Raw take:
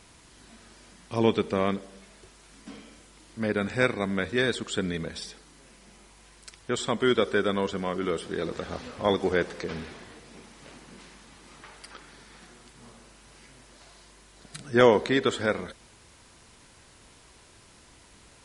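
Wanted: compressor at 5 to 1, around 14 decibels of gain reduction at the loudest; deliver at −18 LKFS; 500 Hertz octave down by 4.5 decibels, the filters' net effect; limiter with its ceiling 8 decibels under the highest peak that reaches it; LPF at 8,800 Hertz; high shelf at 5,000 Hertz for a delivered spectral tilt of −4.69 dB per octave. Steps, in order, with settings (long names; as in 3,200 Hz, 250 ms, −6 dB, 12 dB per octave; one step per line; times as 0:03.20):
low-pass filter 8,800 Hz
parametric band 500 Hz −5.5 dB
high-shelf EQ 5,000 Hz −3.5 dB
downward compressor 5 to 1, threshold −32 dBFS
level +23.5 dB
brickwall limiter −3 dBFS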